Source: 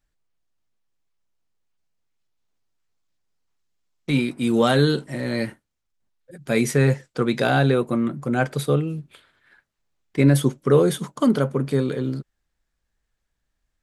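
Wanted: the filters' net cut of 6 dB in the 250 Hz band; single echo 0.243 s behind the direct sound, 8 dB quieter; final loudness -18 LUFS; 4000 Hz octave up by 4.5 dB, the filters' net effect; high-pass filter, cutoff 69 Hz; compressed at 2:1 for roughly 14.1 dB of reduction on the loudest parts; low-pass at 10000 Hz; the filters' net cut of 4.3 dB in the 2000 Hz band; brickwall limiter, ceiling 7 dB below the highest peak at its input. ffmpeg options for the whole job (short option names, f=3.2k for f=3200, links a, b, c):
-af "highpass=69,lowpass=10k,equalizer=f=250:t=o:g=-7.5,equalizer=f=2k:t=o:g=-7.5,equalizer=f=4k:t=o:g=7,acompressor=threshold=-41dB:ratio=2,alimiter=level_in=2.5dB:limit=-24dB:level=0:latency=1,volume=-2.5dB,aecho=1:1:243:0.398,volume=20dB"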